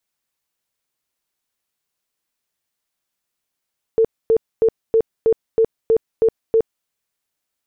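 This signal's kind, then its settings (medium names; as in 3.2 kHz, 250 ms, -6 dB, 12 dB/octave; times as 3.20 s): tone bursts 449 Hz, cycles 30, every 0.32 s, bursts 9, -10.5 dBFS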